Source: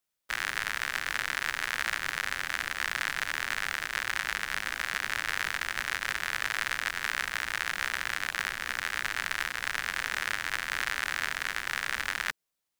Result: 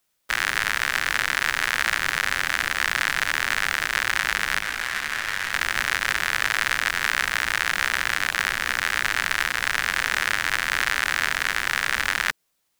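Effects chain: in parallel at +1.5 dB: limiter -20 dBFS, peak gain reduction 9.5 dB; 4.59–5.53 on the sum: detuned doubles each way 23 cents; gain +4.5 dB

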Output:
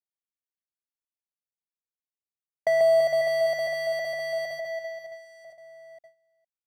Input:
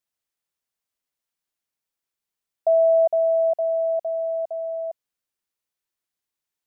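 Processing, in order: median filter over 41 samples; gate with hold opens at -28 dBFS; bell 640 Hz -4 dB 2.9 oct; compressor, threshold -26 dBFS, peak gain reduction 3.5 dB; reverse bouncing-ball echo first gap 0.14 s, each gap 1.4×, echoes 5; gain +5.5 dB

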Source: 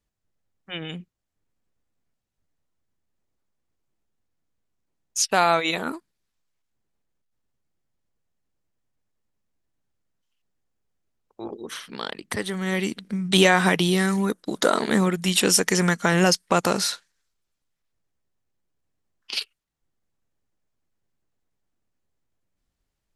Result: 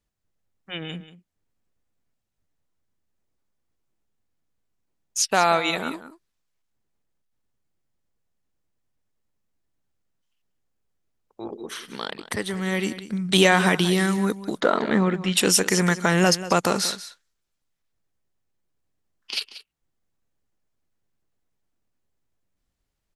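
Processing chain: 14.6–15.37 LPF 2900 Hz 12 dB/oct; echo 0.185 s -14.5 dB

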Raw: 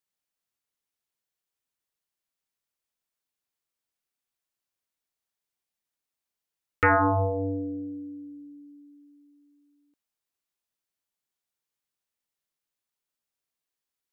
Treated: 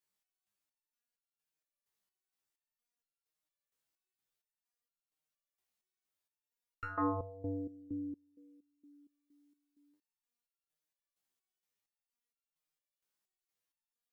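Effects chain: stepped resonator 4.3 Hz 64–1400 Hz; gain +7 dB

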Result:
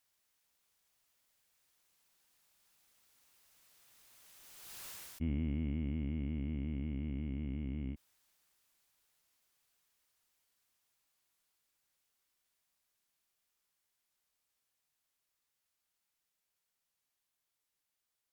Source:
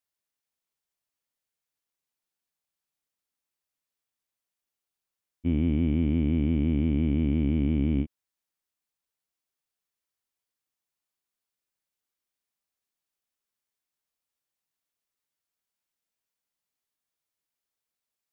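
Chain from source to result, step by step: Doppler pass-by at 4.87, 17 m/s, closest 1.2 m; bell 300 Hz -4 dB 2.5 oct; fast leveller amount 70%; gain +6.5 dB

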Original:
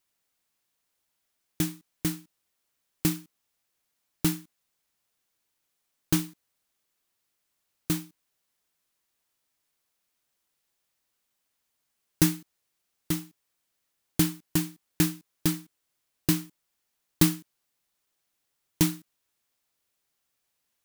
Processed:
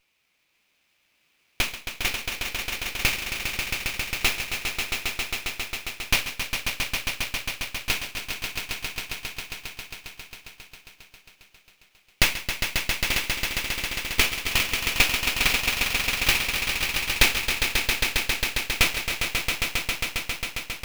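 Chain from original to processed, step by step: resonant high-pass 2400 Hz, resonance Q 5; swelling echo 0.135 s, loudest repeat 5, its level -6.5 dB; running maximum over 5 samples; gain +7 dB

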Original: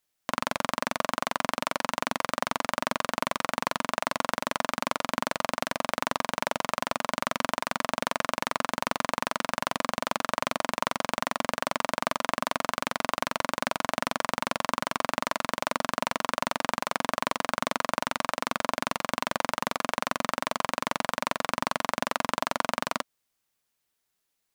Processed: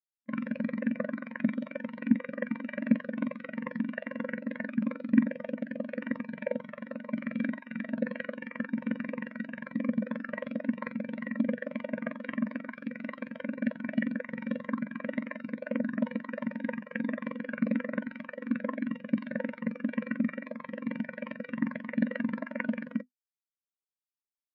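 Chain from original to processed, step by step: self-modulated delay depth 0.096 ms; band shelf 930 Hz -8.5 dB 1.3 oct; notches 50/100/150/200/250 Hz; resonator 71 Hz, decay 0.38 s, harmonics odd, mix 40%; pre-echo 0.12 s -20 dB; spectral expander 4:1; gain +2 dB

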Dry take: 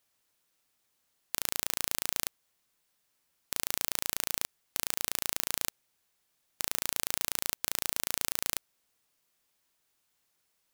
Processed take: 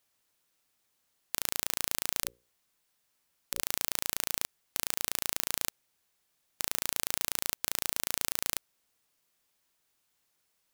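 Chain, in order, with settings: 2.23–3.61 notches 60/120/180/240/300/360/420/480/540 Hz

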